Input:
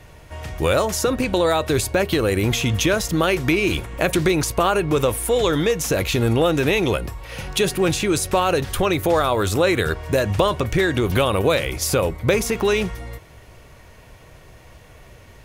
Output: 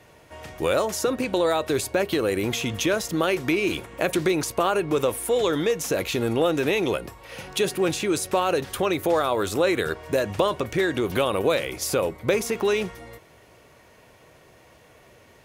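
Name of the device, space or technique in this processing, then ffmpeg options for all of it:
filter by subtraction: -filter_complex "[0:a]asplit=2[a][b];[b]lowpass=340,volume=-1[c];[a][c]amix=inputs=2:normalize=0,volume=-5dB"

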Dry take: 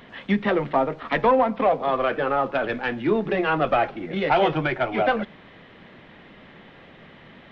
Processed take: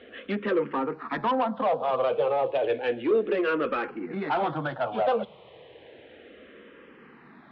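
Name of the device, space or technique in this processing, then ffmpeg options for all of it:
barber-pole phaser into a guitar amplifier: -filter_complex "[0:a]asplit=2[a][b];[b]afreqshift=-0.32[c];[a][c]amix=inputs=2:normalize=1,asoftclip=type=tanh:threshold=-20.5dB,highpass=84,equalizer=f=100:t=q:w=4:g=-7,equalizer=f=170:t=q:w=4:g=-8,equalizer=f=480:t=q:w=4:g=8,equalizer=f=2k:t=q:w=4:g=-6,lowpass=f=3.9k:w=0.5412,lowpass=f=3.9k:w=1.3066"

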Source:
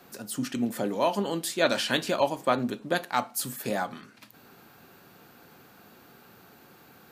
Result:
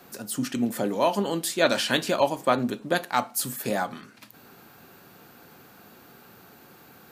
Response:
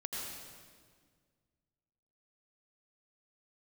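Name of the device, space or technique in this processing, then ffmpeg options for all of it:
exciter from parts: -filter_complex "[0:a]asplit=2[a][b];[b]highpass=4.9k,asoftclip=type=tanh:threshold=-31.5dB,volume=-12dB[c];[a][c]amix=inputs=2:normalize=0,volume=2.5dB"

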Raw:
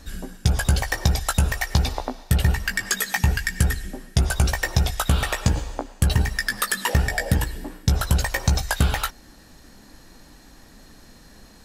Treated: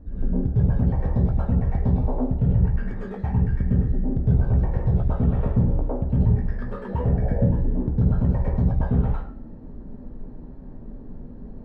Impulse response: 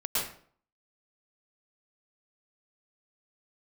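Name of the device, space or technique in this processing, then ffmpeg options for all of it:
television next door: -filter_complex "[0:a]acompressor=threshold=-24dB:ratio=6,lowpass=400[a];[1:a]atrim=start_sample=2205[b];[a][b]afir=irnorm=-1:irlink=0,volume=3.5dB"

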